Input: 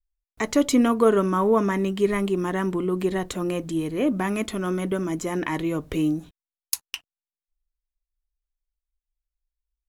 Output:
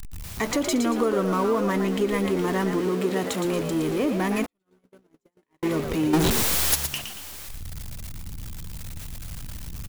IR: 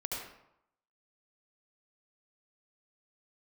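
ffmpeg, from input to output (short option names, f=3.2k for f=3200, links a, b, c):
-filter_complex "[0:a]aeval=exprs='val(0)+0.5*0.0473*sgn(val(0))':c=same,asettb=1/sr,asplit=3[a][b][c];[a]atrim=end=2.804[d];[b]atrim=start=2.8:end=3.45,asetpts=PTS-STARTPTS,afade=t=in:d=0.004:c=qsin,afade=t=out:st=0.646:d=0.004:c=qsin,highpass=120[e];[c]atrim=start=3.446[f];[d][e]acrossfade=d=0.004:c1=hsin:c2=qsin[g];[g][f]acrossfade=d=0.004:c1=qsin:c2=hsin,asplit=3[h][i][j];[h]afade=t=out:st=6.13:d=0.02[k];[i]aeval=exprs='0.75*sin(PI/2*10*val(0)/0.75)':c=same,afade=t=in:st=6.13:d=0.02,afade=t=out:st=6.74:d=0.02[l];[j]afade=t=in:st=6.74:d=0.02[m];[k][l][m]amix=inputs=3:normalize=0,acompressor=threshold=-18dB:ratio=8,asplit=6[n][o][p][q][r][s];[o]adelay=115,afreqshift=70,volume=-7dB[t];[p]adelay=230,afreqshift=140,volume=-15.2dB[u];[q]adelay=345,afreqshift=210,volume=-23.4dB[v];[r]adelay=460,afreqshift=280,volume=-31.5dB[w];[s]adelay=575,afreqshift=350,volume=-39.7dB[x];[n][t][u][v][w][x]amix=inputs=6:normalize=0,asettb=1/sr,asplit=3[y][z][aa];[y]atrim=end=4.464[ab];[z]atrim=start=4.46:end=5.63,asetpts=PTS-STARTPTS,afade=t=in:d=0.004:c=qsin,afade=t=out:st=1.166:d=0.004:c=qsin,agate=range=-58dB:threshold=-17dB:ratio=16:detection=peak[ac];[aa]atrim=start=5.626[ad];[ab][ac]acrossfade=d=0.004:c1=hsin:c2=qsin[ae];[ae][ad]acrossfade=d=0.004:c1=qsin:c2=hsin,volume=-2dB"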